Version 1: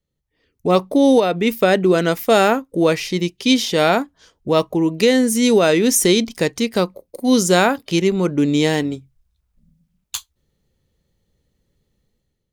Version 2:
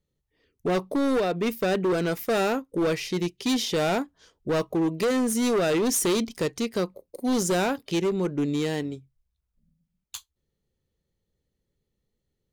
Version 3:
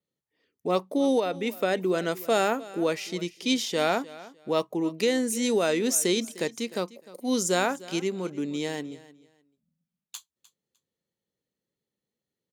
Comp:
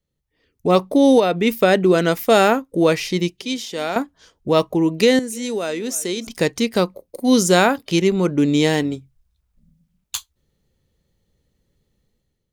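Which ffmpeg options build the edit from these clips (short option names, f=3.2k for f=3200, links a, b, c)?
-filter_complex "[2:a]asplit=2[a][b];[0:a]asplit=3[c][d][e];[c]atrim=end=3.422[f];[a]atrim=start=3.418:end=3.962[g];[d]atrim=start=3.958:end=5.192[h];[b]atrim=start=5.188:end=6.272[i];[e]atrim=start=6.268[j];[f][g]acrossfade=d=0.004:c1=hsin:c2=hsin[k];[k][h]acrossfade=d=0.004:c1=hsin:c2=hsin[l];[l][i]acrossfade=d=0.004:c1=hsin:c2=hsin[m];[m][j]acrossfade=d=0.004:c1=hsin:c2=hsin"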